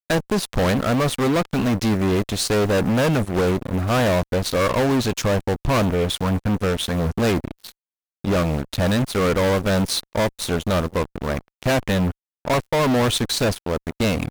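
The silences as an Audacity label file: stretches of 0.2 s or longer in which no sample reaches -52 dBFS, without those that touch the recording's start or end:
7.720000	8.240000	silence
12.120000	12.450000	silence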